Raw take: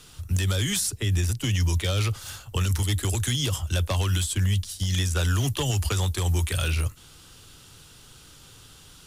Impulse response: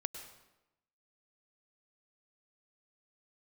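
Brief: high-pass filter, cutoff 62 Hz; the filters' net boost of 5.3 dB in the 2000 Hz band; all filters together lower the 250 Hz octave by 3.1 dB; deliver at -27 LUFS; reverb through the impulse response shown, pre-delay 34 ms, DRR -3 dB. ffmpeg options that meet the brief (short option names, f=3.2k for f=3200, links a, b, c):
-filter_complex "[0:a]highpass=62,equalizer=f=250:t=o:g=-5,equalizer=f=2k:t=o:g=7,asplit=2[a][b];[1:a]atrim=start_sample=2205,adelay=34[c];[b][c]afir=irnorm=-1:irlink=0,volume=3.5dB[d];[a][d]amix=inputs=2:normalize=0,volume=-6.5dB"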